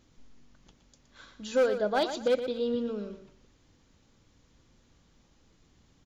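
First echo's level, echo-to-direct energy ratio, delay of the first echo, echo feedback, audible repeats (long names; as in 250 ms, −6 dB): −10.0 dB, −9.5 dB, 118 ms, 25%, 3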